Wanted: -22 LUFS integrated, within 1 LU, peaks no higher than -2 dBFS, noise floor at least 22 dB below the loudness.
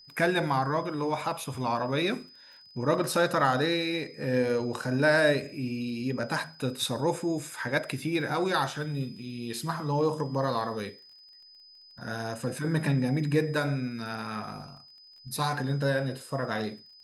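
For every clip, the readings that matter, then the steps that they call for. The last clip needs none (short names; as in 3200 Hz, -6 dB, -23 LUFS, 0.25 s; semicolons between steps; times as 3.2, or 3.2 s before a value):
ticks 32/s; steady tone 5000 Hz; tone level -51 dBFS; loudness -29.0 LUFS; peak -12.0 dBFS; loudness target -22.0 LUFS
-> de-click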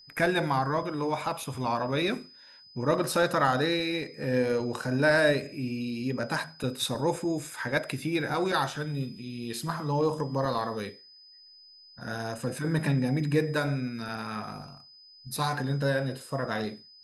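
ticks 0/s; steady tone 5000 Hz; tone level -51 dBFS
-> notch 5000 Hz, Q 30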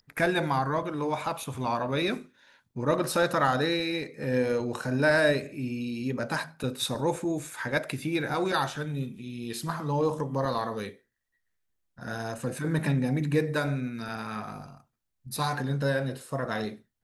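steady tone none; loudness -29.0 LUFS; peak -12.0 dBFS; loudness target -22.0 LUFS
-> gain +7 dB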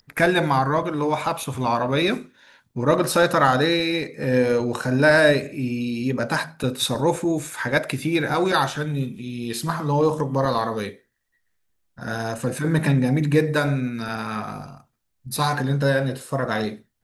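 loudness -22.0 LUFS; peak -5.0 dBFS; noise floor -71 dBFS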